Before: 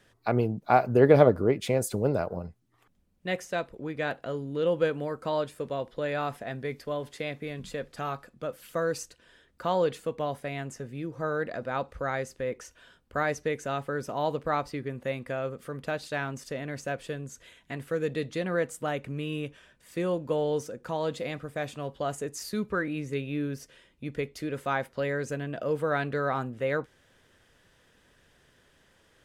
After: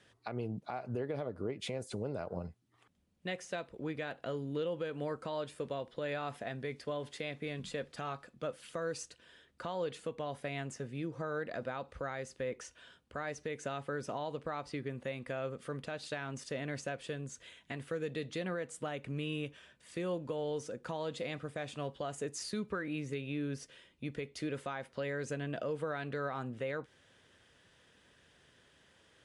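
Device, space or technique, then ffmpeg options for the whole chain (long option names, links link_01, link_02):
podcast mastering chain: -af "highpass=61,equalizer=frequency=3200:width=1.4:gain=3.5,deesser=0.7,acompressor=threshold=-29dB:ratio=2.5,alimiter=level_in=0.5dB:limit=-24dB:level=0:latency=1:release=195,volume=-0.5dB,volume=-2.5dB" -ar 24000 -c:a libmp3lame -b:a 96k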